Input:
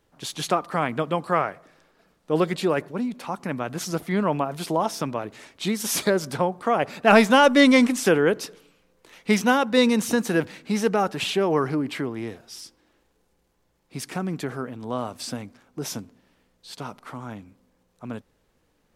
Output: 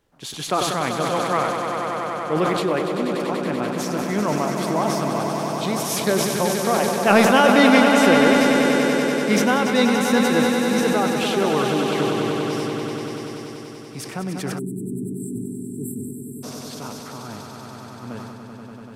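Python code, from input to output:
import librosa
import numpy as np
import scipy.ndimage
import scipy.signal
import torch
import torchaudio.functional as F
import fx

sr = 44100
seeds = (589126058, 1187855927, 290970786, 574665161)

y = fx.echo_swell(x, sr, ms=96, loudest=5, wet_db=-8.0)
y = fx.spec_erase(y, sr, start_s=14.59, length_s=1.84, low_hz=450.0, high_hz=7400.0)
y = fx.sustainer(y, sr, db_per_s=29.0)
y = F.gain(torch.from_numpy(y), -1.0).numpy()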